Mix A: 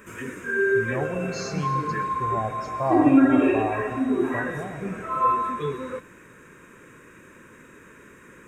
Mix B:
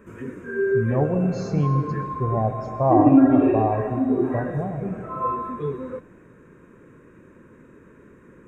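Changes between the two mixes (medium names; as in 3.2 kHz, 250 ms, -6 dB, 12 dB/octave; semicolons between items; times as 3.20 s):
background -6.5 dB; master: add tilt shelf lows +9.5 dB, about 1.3 kHz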